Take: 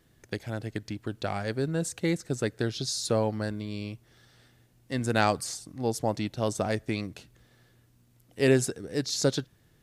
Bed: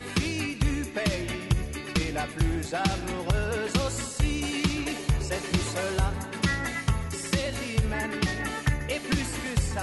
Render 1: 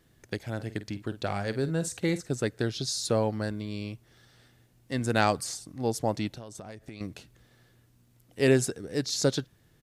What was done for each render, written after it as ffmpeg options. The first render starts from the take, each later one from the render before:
-filter_complex "[0:a]asplit=3[a][b][c];[a]afade=t=out:st=0.58:d=0.02[d];[b]asplit=2[e][f];[f]adelay=50,volume=-13dB[g];[e][g]amix=inputs=2:normalize=0,afade=t=in:st=0.58:d=0.02,afade=t=out:st=2.25:d=0.02[h];[c]afade=t=in:st=2.25:d=0.02[i];[d][h][i]amix=inputs=3:normalize=0,asettb=1/sr,asplit=3[j][k][l];[j]atrim=end=6.354[m];[k]atrim=start=6.35:end=7.01,asetpts=PTS-STARTPTS,afade=t=in:d=0.004:c=qsin,afade=t=out:st=0.656:d=0.004:c=qsin,acompressor=threshold=-38dB:ratio=16:attack=3.2:release=140:knee=1:detection=peak[n];[l]atrim=start=7.006[o];[m][n]acrossfade=d=0.004:c1=hsin:c2=qsin[p];[p][o]acrossfade=d=0.004:c1=qsin:c2=hsin"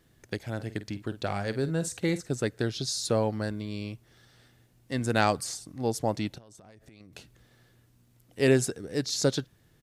-filter_complex "[0:a]asettb=1/sr,asplit=3[a][b][c];[a]atrim=end=6.384[d];[b]atrim=start=6.38:end=7.13,asetpts=PTS-STARTPTS,afade=t=in:d=0.004:c=qsin,afade=t=out:st=0.746:d=0.004:c=qsin,acompressor=threshold=-49dB:ratio=6:attack=3.2:release=140:knee=1:detection=peak[e];[c]atrim=start=7.126[f];[d][e]acrossfade=d=0.004:c1=hsin:c2=qsin[g];[g][f]acrossfade=d=0.004:c1=qsin:c2=hsin"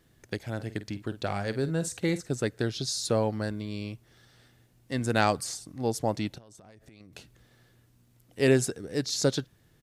-af anull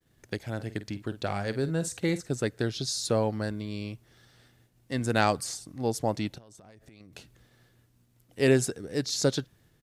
-af "agate=range=-33dB:threshold=-59dB:ratio=3:detection=peak"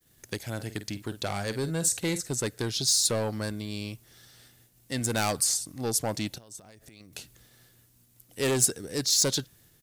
-af "asoftclip=type=tanh:threshold=-22.5dB,crystalizer=i=3:c=0"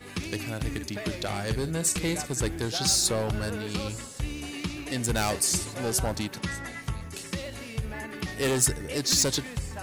-filter_complex "[1:a]volume=-7dB[a];[0:a][a]amix=inputs=2:normalize=0"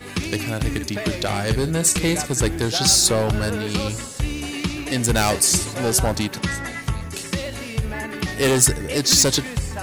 -af "volume=8dB,alimiter=limit=-2dB:level=0:latency=1"

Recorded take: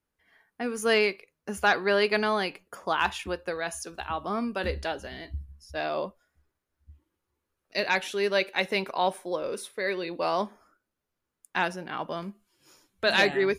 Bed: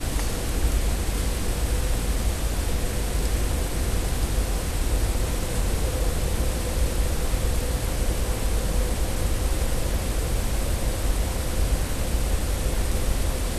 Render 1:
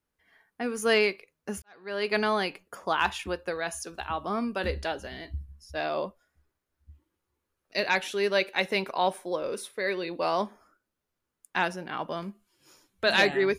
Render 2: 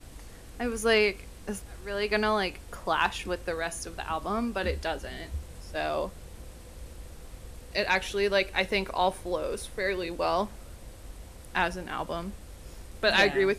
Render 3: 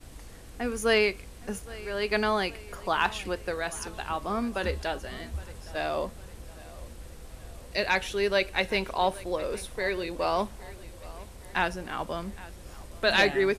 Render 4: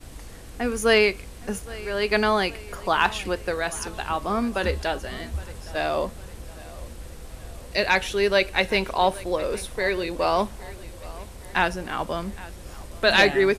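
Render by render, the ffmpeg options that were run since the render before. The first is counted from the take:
-filter_complex "[0:a]asplit=2[a][b];[a]atrim=end=1.62,asetpts=PTS-STARTPTS,afade=t=out:st=1.616:d=0.004:c=hsin[c];[b]atrim=start=1.62,asetpts=PTS-STARTPTS,afade=t=in:d=0.56:c=qua[d];[c][d]concat=n=2:v=0:a=1"
-filter_complex "[1:a]volume=-20.5dB[a];[0:a][a]amix=inputs=2:normalize=0"
-af "aecho=1:1:815|1630|2445|3260:0.1|0.05|0.025|0.0125"
-af "volume=5dB"

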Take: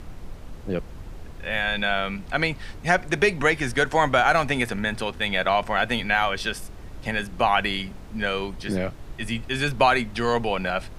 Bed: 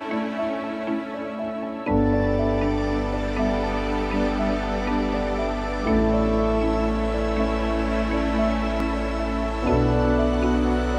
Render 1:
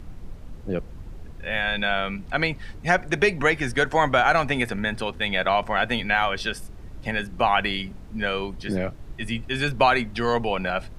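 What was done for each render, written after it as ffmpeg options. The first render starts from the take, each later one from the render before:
-af "afftdn=nr=6:nf=-40"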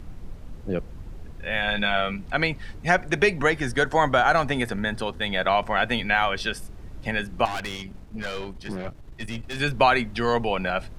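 -filter_complex "[0:a]asettb=1/sr,asplit=3[a][b][c];[a]atrim=end=1.604[d];[b]atrim=start=1.6:end=2.13,asetpts=PTS-STARTPTS,afade=t=in:d=0.004:c=qsin,afade=t=out:st=0.526:d=0.004:c=qsin,asplit=2[e][f];[f]adelay=19,volume=-7dB[g];[e][g]amix=inputs=2:normalize=0,atrim=end_sample=23373[h];[c]atrim=start=2.126[i];[d][h]acrossfade=d=0.004:c1=hsin:c2=qsin[j];[j][i]acrossfade=d=0.004:c1=qsin:c2=hsin,asettb=1/sr,asplit=3[k][l][m];[k]atrim=end=3.414[n];[l]atrim=start=3.41:end=5.45,asetpts=PTS-STARTPTS,afade=t=in:d=0.004:c=qsin,afade=t=out:st=2.036:d=0.004:c=qsin,equalizer=f=2.4k:t=o:w=0.42:g=-6.5[o];[m]atrim=start=5.446[p];[n][o]acrossfade=d=0.004:c1=hsin:c2=qsin[q];[q][p]acrossfade=d=0.004:c1=qsin:c2=hsin,asettb=1/sr,asplit=3[r][s][t];[r]atrim=end=7.454[u];[s]atrim=start=7.45:end=9.6,asetpts=PTS-STARTPTS,afade=t=in:d=0.004:c=qsin,afade=t=out:st=2.146:d=0.004:c=qsin,aeval=exprs='(tanh(22.4*val(0)+0.65)-tanh(0.65))/22.4':c=same[v];[t]atrim=start=9.596[w];[u][v]acrossfade=d=0.004:c1=hsin:c2=qsin[x];[x][w]acrossfade=d=0.004:c1=qsin:c2=hsin"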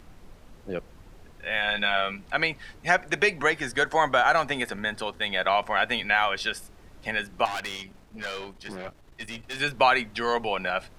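-af "lowshelf=f=310:g=-12,bandreject=f=60:t=h:w=6,bandreject=f=120:t=h:w=6"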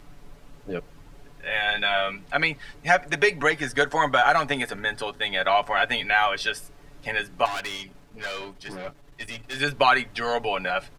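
-af "aecho=1:1:7:0.67"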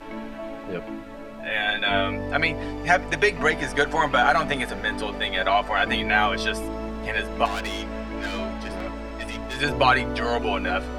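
-filter_complex "[1:a]volume=-9dB[a];[0:a][a]amix=inputs=2:normalize=0"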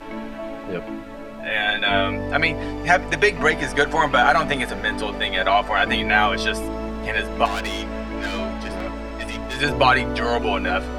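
-af "volume=3dB,alimiter=limit=-3dB:level=0:latency=1"

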